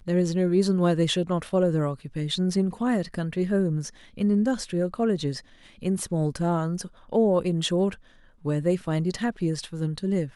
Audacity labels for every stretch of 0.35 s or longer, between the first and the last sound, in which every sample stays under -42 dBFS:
7.950000	8.440000	silence